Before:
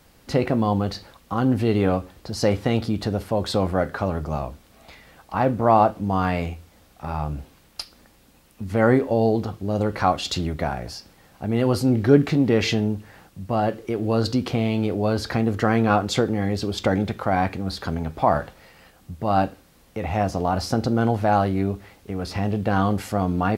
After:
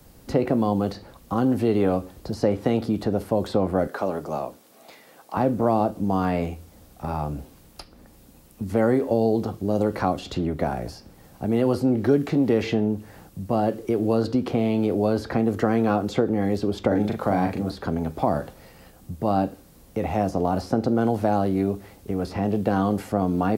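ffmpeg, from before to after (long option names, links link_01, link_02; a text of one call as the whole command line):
ffmpeg -i in.wav -filter_complex "[0:a]asettb=1/sr,asplit=3[link_01][link_02][link_03];[link_01]atrim=end=3.874[link_04];[link_02]atrim=start=3.87:end=5.37,asetpts=PTS-STARTPTS,afade=type=in:duration=0.004:curve=qsin,afade=type=out:start_time=1.496:duration=0.004:curve=qsin,highpass=340[link_05];[link_03]atrim=start=5.366[link_06];[link_04][link_05]acrossfade=duration=0.004:curve1=hsin:curve2=qsin[link_07];[link_07][link_06]acrossfade=duration=0.004:curve1=qsin:curve2=hsin,asettb=1/sr,asplit=3[link_08][link_09][link_10];[link_08]atrim=end=16.874[link_11];[link_09]atrim=start=16.87:end=17.71,asetpts=PTS-STARTPTS,afade=type=in:duration=0.004:curve=qsin,afade=type=out:start_time=0.836:duration=0.004:curve=qsin,asplit=2[link_12][link_13];[link_13]adelay=39,volume=-4.5dB[link_14];[link_12][link_14]amix=inputs=2:normalize=0,atrim=end_sample=37044[link_15];[link_10]atrim=start=17.706[link_16];[link_11][link_15]acrossfade=duration=0.004:curve1=hsin:curve2=qsin[link_17];[link_17][link_16]acrossfade=duration=0.004:curve1=qsin:curve2=hsin,equalizer=frequency=2200:width=0.39:gain=-9.5,acrossover=split=200|470|2900[link_18][link_19][link_20][link_21];[link_18]acompressor=threshold=-40dB:ratio=4[link_22];[link_19]acompressor=threshold=-27dB:ratio=4[link_23];[link_20]acompressor=threshold=-30dB:ratio=4[link_24];[link_21]acompressor=threshold=-53dB:ratio=4[link_25];[link_22][link_23][link_24][link_25]amix=inputs=4:normalize=0,volume=6dB" out.wav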